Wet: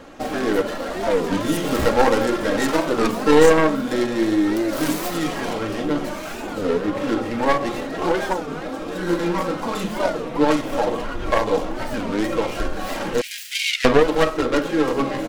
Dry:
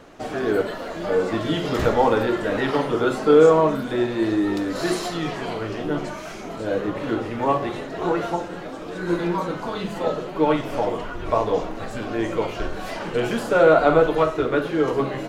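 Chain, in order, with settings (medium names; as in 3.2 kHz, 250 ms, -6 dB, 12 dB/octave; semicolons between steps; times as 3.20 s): tracing distortion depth 0.39 ms; 13.21–13.87 s: steep high-pass 2 kHz 48 dB/octave; comb 3.7 ms, depth 40%; in parallel at -2 dB: compression, threshold -25 dBFS, peak gain reduction 16.5 dB; on the sum: warped record 33 1/3 rpm, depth 250 cents; trim -1.5 dB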